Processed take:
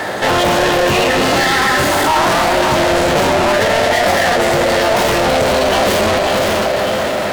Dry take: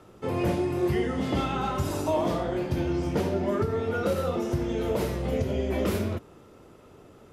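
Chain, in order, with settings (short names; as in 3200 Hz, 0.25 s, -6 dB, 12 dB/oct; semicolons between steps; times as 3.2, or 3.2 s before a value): diffused feedback echo 0.532 s, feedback 40%, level -8.5 dB; overdrive pedal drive 38 dB, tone 3800 Hz, clips at -13.5 dBFS; formant shift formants +5 st; gain +6.5 dB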